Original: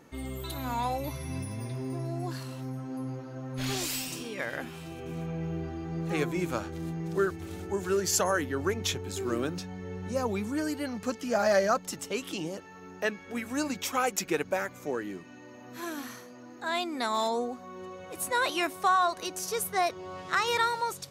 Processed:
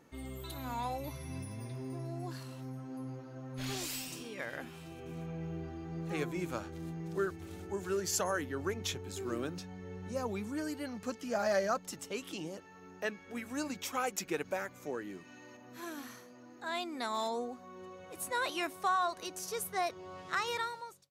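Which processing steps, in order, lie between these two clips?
fade out at the end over 0.71 s; 14.44–15.57 s: tape noise reduction on one side only encoder only; trim -6.5 dB

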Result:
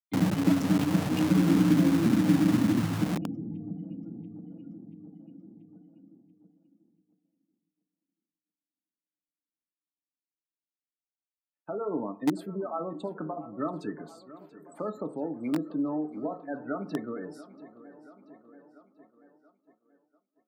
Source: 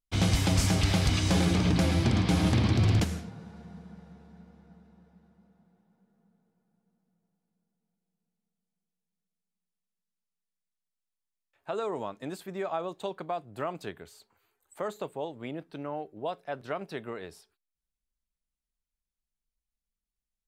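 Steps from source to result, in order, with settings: spectral gate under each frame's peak -15 dB strong; tilt shelf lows +6.5 dB, about 1.4 kHz; tape echo 684 ms, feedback 69%, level -16 dB, low-pass 5.9 kHz; FDN reverb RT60 0.42 s, low-frequency decay 0.8×, high-frequency decay 0.3×, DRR 7 dB; expander -51 dBFS; high-order bell 640 Hz -9.5 dB; in parallel at -7 dB: bit crusher 4-bit; on the sum: compression, threshold -17 dBFS, peak gain reduction 9 dB; high-pass 180 Hz 24 dB/octave; trim +3 dB

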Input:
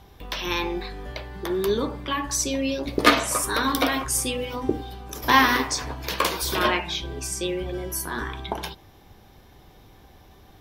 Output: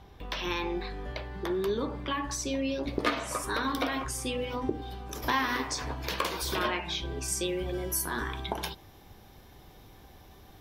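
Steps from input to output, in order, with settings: compression 2.5:1, threshold -26 dBFS, peak gain reduction 10.5 dB; treble shelf 6.6 kHz -11 dB, from 4.82 s -5.5 dB, from 7.28 s +3.5 dB; trim -2 dB

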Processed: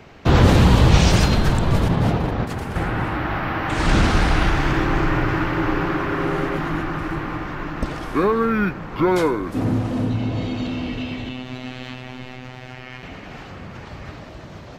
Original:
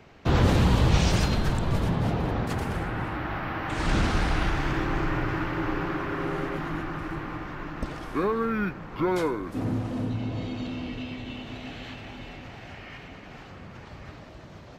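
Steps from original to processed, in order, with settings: 1.88–2.76 s: gate -26 dBFS, range -6 dB; 11.29–13.03 s: robot voice 127 Hz; trim +7.5 dB

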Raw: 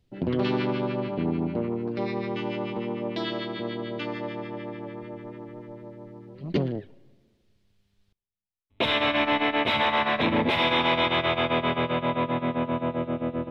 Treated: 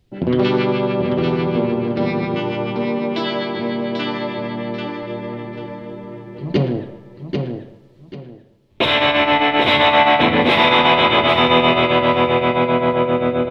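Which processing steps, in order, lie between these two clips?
feedback delay 789 ms, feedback 26%, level -5 dB; on a send at -6 dB: reverberation RT60 0.85 s, pre-delay 3 ms; on the sum: trim +7.5 dB

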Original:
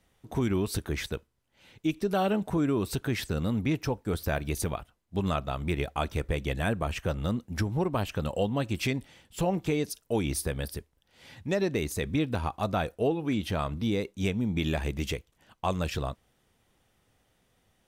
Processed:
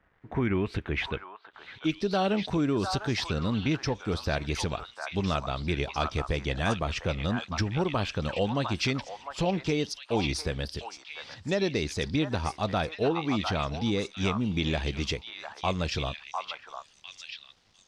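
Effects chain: bit crusher 11-bit; repeats whose band climbs or falls 702 ms, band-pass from 1.1 kHz, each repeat 1.4 oct, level -1 dB; low-pass sweep 1.6 kHz -> 5 kHz, 0.03–2.10 s

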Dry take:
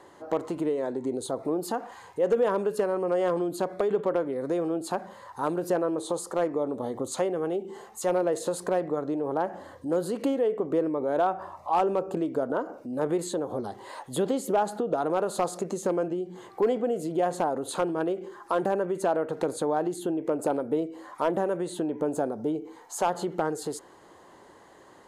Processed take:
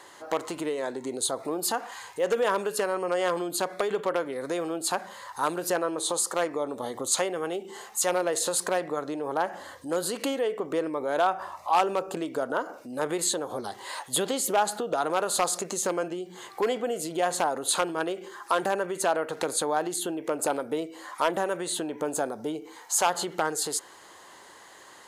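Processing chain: tilt shelf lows -9 dB; trim +3 dB

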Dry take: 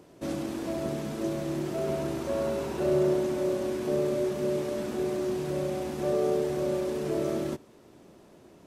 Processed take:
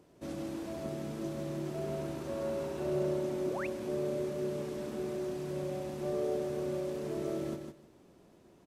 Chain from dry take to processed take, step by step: bass shelf 120 Hz +4 dB; feedback delay 155 ms, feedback 18%, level -5.5 dB; painted sound rise, 3.46–3.67 s, 230–2900 Hz -32 dBFS; trim -8.5 dB

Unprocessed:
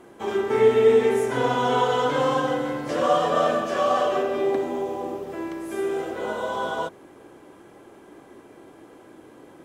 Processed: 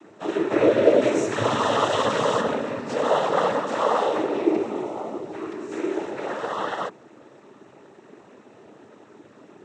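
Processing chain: 1.01–2.41 s: treble shelf 4.4 kHz +10 dB; noise-vocoded speech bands 12

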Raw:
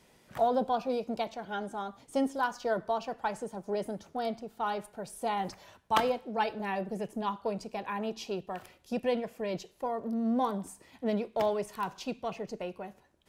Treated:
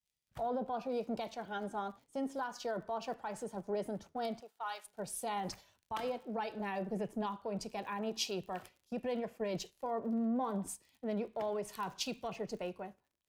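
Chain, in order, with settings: 4.39–4.85 s: high-pass 490 Hz -> 1.3 kHz 12 dB/octave; gate -48 dBFS, range -7 dB; compression 3:1, threshold -31 dBFS, peak gain reduction 8.5 dB; peak limiter -29.5 dBFS, peak gain reduction 10 dB; crackle 42 per s -48 dBFS; three bands expanded up and down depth 100%

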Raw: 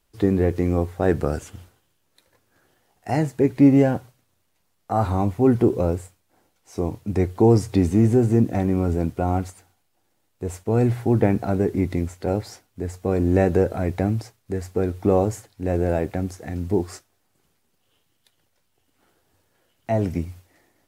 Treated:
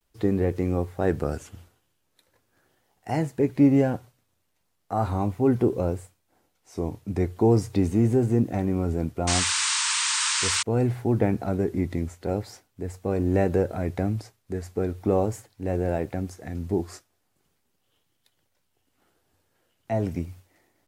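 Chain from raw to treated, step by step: vibrato 0.4 Hz 42 cents; painted sound noise, 9.27–10.63 s, 860–9200 Hz -21 dBFS; trim -4 dB

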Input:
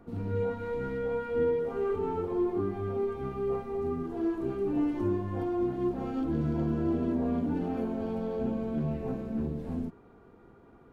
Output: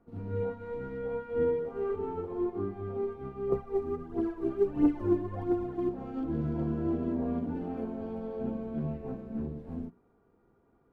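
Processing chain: treble shelf 2.8 kHz -9 dB; hum notches 60/120/180/240/300/360 Hz; 3.52–5.89 s: phaser 1.5 Hz, delay 3.5 ms, feedback 57%; upward expansion 1.5:1, over -47 dBFS; trim +2 dB

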